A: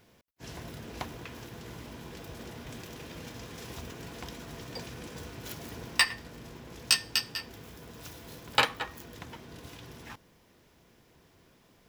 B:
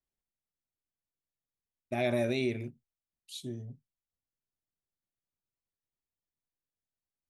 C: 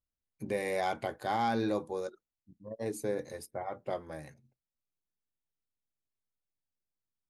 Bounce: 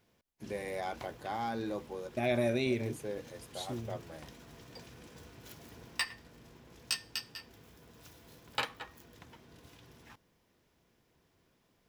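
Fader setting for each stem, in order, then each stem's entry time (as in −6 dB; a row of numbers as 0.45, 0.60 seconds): −10.0, −0.5, −6.0 decibels; 0.00, 0.25, 0.00 seconds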